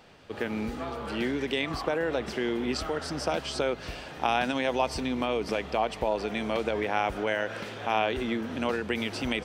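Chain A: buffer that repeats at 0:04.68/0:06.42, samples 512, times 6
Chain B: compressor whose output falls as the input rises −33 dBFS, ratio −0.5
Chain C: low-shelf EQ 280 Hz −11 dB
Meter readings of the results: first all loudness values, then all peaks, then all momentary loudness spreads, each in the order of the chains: −30.0, −34.0, −32.0 LKFS; −11.0, −17.5, −11.5 dBFS; 7, 5, 7 LU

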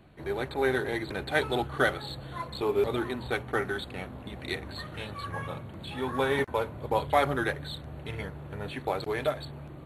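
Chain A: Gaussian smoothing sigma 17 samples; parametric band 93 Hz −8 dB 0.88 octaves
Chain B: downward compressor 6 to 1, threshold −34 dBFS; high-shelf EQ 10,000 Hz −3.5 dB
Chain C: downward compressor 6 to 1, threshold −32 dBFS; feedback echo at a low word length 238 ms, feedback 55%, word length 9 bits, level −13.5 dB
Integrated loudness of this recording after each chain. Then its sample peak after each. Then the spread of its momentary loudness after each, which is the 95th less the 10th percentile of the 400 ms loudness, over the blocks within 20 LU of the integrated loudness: −38.5, −39.0, −37.5 LKFS; −21.0, −21.5, −20.5 dBFS; 13, 4, 4 LU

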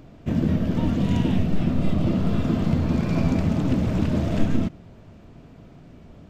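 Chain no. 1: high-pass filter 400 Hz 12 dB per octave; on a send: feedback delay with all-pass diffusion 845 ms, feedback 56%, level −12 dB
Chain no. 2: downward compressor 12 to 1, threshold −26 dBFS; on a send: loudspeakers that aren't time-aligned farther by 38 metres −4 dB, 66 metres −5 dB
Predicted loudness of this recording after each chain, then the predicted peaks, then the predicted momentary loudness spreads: −32.5, −29.5 LKFS; −18.5, −15.0 dBFS; 12, 17 LU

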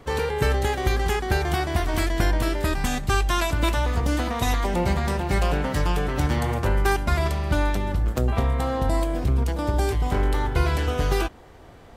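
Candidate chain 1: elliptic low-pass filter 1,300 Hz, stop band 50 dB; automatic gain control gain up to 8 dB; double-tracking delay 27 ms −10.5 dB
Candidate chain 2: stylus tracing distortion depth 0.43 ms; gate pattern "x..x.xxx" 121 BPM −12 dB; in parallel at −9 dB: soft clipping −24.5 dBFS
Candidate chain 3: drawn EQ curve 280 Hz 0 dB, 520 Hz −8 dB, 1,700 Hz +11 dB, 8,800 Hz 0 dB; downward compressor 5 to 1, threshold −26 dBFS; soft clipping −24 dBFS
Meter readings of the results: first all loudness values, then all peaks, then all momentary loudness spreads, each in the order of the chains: −18.0, −24.5, −31.5 LKFS; −2.0, −8.5, −24.0 dBFS; 3, 5, 2 LU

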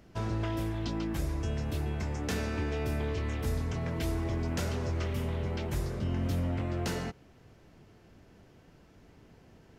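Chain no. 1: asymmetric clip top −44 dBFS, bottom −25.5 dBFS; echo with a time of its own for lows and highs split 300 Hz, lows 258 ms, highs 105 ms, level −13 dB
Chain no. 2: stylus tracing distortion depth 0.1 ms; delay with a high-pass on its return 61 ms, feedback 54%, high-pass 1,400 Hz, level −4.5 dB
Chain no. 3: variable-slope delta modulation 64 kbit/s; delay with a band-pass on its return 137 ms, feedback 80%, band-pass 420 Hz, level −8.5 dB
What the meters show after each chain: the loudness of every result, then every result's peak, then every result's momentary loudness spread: −37.0, −33.5, −33.0 LKFS; −24.5, −20.0, −20.5 dBFS; 4, 2, 11 LU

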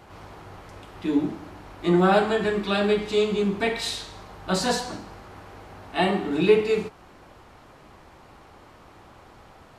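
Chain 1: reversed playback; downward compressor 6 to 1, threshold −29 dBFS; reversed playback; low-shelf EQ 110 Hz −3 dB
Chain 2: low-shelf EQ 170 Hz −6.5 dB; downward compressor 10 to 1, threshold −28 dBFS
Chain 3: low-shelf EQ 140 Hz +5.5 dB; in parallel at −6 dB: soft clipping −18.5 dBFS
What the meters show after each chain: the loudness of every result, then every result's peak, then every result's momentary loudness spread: −34.5, −34.0, −20.5 LKFS; −20.0, −17.0, −5.0 dBFS; 19, 19, 22 LU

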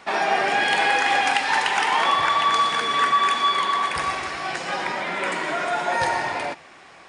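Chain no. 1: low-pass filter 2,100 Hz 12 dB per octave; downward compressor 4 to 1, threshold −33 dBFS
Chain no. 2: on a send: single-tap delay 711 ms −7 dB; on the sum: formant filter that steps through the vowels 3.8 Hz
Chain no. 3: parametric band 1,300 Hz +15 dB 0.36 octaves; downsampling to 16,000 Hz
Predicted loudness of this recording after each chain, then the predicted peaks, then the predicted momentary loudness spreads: −33.5, −32.0, −16.0 LKFS; −21.0, −16.5, −1.0 dBFS; 3, 10, 10 LU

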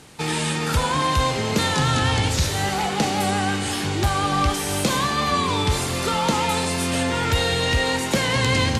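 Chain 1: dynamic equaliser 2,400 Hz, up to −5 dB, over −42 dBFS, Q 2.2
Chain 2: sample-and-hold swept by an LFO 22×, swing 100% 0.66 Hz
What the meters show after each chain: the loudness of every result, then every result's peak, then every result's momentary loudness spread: −22.0, −22.0 LKFS; −11.0, −11.5 dBFS; 3, 3 LU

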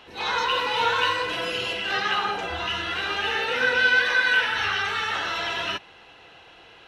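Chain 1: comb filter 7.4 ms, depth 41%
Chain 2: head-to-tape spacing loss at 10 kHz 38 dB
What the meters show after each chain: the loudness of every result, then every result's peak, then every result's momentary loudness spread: −22.5, −29.5 LKFS; −9.0, −15.0 dBFS; 8, 9 LU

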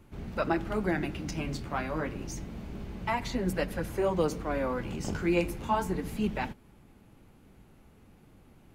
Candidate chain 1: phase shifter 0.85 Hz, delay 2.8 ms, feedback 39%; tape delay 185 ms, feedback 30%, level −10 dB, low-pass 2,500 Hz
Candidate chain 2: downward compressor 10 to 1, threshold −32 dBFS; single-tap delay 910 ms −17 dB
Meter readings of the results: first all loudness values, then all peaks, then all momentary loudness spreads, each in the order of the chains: −31.0, −38.0 LKFS; −14.5, −21.5 dBFS; 10, 15 LU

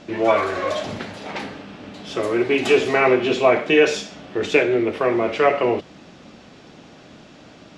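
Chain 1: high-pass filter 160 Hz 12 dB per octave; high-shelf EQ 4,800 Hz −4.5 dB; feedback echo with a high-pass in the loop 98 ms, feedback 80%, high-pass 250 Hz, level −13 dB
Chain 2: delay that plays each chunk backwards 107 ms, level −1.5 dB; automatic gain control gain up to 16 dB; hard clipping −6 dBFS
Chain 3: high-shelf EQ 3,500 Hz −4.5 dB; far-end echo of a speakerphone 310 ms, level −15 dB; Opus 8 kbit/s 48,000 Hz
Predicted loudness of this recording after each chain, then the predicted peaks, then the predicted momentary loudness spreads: −19.5, −16.5, −21.0 LKFS; −3.0, −6.0, −3.5 dBFS; 17, 14, 17 LU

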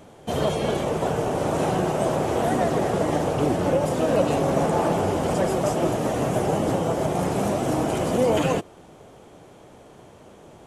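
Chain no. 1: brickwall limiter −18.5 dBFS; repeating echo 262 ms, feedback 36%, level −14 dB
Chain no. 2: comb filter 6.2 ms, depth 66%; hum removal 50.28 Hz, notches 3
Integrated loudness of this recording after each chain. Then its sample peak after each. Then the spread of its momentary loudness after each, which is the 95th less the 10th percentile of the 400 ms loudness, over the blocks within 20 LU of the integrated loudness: −27.5, −21.5 LKFS; −17.0, −6.5 dBFS; 2, 4 LU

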